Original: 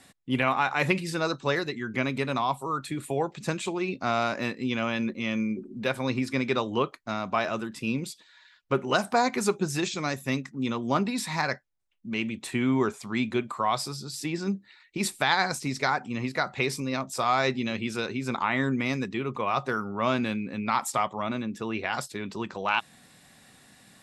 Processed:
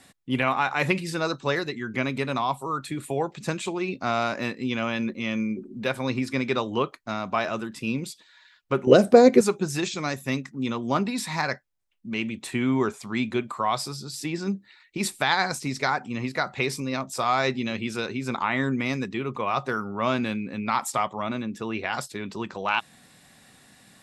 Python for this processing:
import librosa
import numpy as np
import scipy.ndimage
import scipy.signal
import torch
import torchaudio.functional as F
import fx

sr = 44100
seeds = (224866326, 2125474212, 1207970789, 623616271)

y = fx.low_shelf_res(x, sr, hz=670.0, db=9.5, q=3.0, at=(8.87, 9.41))
y = y * librosa.db_to_amplitude(1.0)